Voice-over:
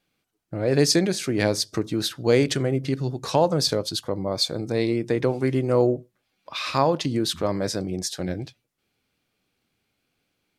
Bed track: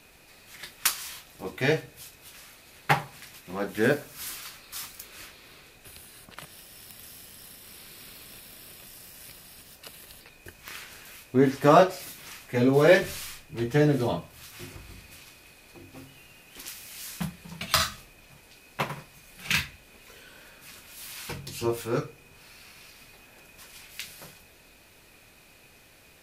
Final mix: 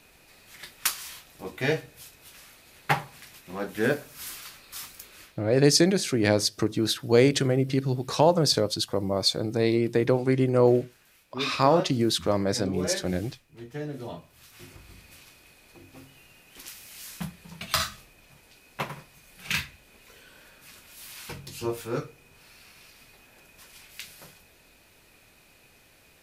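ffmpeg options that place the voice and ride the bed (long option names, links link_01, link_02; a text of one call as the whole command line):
ffmpeg -i stem1.wav -i stem2.wav -filter_complex "[0:a]adelay=4850,volume=0dB[link_01];[1:a]volume=9.5dB,afade=type=out:start_time=5.04:duration=0.41:silence=0.251189,afade=type=in:start_time=13.87:duration=1.23:silence=0.281838[link_02];[link_01][link_02]amix=inputs=2:normalize=0" out.wav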